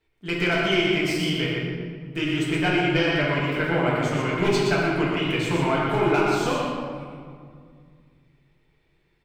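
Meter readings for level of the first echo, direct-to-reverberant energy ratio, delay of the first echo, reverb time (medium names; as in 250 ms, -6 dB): -4.0 dB, -7.0 dB, 121 ms, 2.1 s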